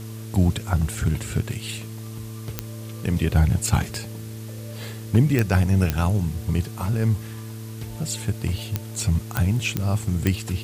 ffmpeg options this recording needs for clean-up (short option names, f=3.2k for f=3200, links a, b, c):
-af "adeclick=t=4,bandreject=f=110.8:t=h:w=4,bandreject=f=221.6:t=h:w=4,bandreject=f=332.4:t=h:w=4,bandreject=f=443.2:t=h:w=4,afwtdn=0.005"